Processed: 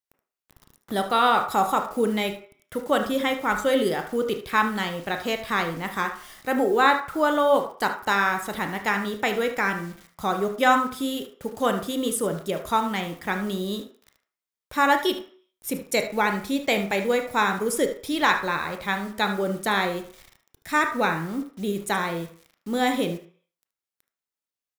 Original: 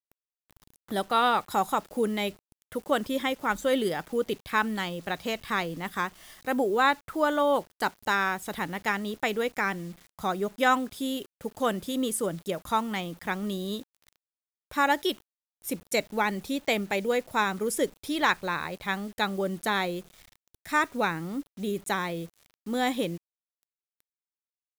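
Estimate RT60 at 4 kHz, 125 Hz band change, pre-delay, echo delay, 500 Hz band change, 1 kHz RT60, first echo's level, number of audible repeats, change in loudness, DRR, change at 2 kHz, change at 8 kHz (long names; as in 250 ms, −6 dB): 0.55 s, +3.5 dB, 22 ms, 75 ms, +4.0 dB, 0.50 s, −12.5 dB, 1, +4.0 dB, 5.0 dB, +4.0 dB, +3.0 dB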